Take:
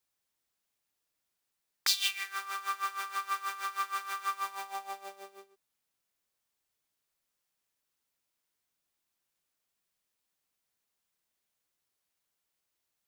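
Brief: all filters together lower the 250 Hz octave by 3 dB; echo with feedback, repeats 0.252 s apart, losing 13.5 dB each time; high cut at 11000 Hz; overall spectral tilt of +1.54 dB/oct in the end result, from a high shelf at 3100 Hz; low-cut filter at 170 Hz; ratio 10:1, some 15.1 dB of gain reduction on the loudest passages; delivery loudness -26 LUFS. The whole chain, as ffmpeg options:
-af "highpass=170,lowpass=11k,equalizer=f=250:t=o:g=-6.5,highshelf=f=3.1k:g=-5,acompressor=threshold=-44dB:ratio=10,aecho=1:1:252|504:0.211|0.0444,volume=22.5dB"

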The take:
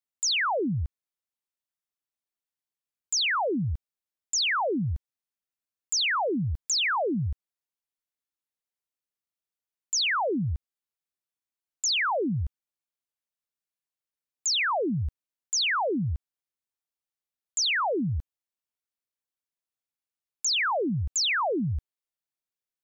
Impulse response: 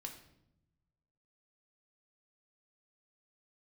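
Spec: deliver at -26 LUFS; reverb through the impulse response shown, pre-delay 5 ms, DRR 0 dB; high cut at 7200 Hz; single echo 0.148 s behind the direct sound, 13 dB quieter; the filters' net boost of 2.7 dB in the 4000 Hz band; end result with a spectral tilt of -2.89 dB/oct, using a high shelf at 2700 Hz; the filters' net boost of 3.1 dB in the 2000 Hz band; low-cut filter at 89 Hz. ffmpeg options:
-filter_complex "[0:a]highpass=89,lowpass=7.2k,equalizer=f=2k:t=o:g=4,highshelf=f=2.7k:g=-3.5,equalizer=f=4k:t=o:g=5.5,aecho=1:1:148:0.224,asplit=2[a][b];[1:a]atrim=start_sample=2205,adelay=5[c];[b][c]afir=irnorm=-1:irlink=0,volume=3.5dB[d];[a][d]amix=inputs=2:normalize=0,volume=-4dB"

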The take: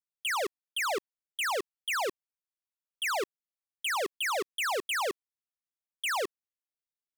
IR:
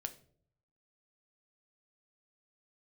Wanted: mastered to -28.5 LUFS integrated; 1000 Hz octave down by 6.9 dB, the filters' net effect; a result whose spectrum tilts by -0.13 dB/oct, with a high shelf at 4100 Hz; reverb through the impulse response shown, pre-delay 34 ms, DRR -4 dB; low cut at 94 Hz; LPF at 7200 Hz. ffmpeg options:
-filter_complex "[0:a]highpass=94,lowpass=7.2k,equalizer=f=1k:t=o:g=-9,highshelf=f=4.1k:g=-4,asplit=2[a][b];[1:a]atrim=start_sample=2205,adelay=34[c];[b][c]afir=irnorm=-1:irlink=0,volume=6dB[d];[a][d]amix=inputs=2:normalize=0,volume=1.5dB"

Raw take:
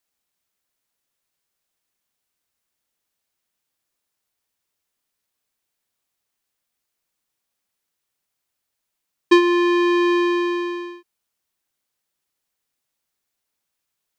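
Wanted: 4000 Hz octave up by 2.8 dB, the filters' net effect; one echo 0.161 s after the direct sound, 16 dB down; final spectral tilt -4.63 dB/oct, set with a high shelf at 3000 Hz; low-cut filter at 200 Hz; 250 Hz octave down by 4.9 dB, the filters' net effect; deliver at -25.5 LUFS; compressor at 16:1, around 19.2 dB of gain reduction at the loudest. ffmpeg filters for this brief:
-af "highpass=200,equalizer=f=250:t=o:g=-8.5,highshelf=f=3k:g=-4.5,equalizer=f=4k:t=o:g=7,acompressor=threshold=-29dB:ratio=16,aecho=1:1:161:0.158,volume=9.5dB"

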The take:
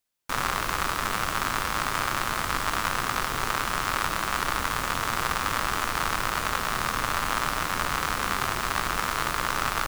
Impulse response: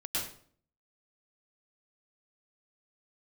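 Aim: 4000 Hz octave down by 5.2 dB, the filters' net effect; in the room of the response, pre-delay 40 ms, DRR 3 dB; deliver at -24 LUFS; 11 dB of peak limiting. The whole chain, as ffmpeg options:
-filter_complex "[0:a]equalizer=f=4k:t=o:g=-7,alimiter=limit=-21.5dB:level=0:latency=1,asplit=2[a][b];[1:a]atrim=start_sample=2205,adelay=40[c];[b][c]afir=irnorm=-1:irlink=0,volume=-7.5dB[d];[a][d]amix=inputs=2:normalize=0,volume=9dB"

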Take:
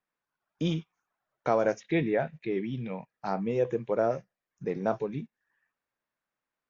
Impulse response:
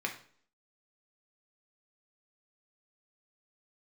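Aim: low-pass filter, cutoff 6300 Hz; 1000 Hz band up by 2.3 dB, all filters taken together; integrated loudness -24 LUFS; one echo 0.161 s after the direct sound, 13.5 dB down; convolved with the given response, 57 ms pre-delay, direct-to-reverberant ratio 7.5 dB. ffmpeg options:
-filter_complex "[0:a]lowpass=6.3k,equalizer=f=1k:t=o:g=3.5,aecho=1:1:161:0.211,asplit=2[a][b];[1:a]atrim=start_sample=2205,adelay=57[c];[b][c]afir=irnorm=-1:irlink=0,volume=-12dB[d];[a][d]amix=inputs=2:normalize=0,volume=5.5dB"

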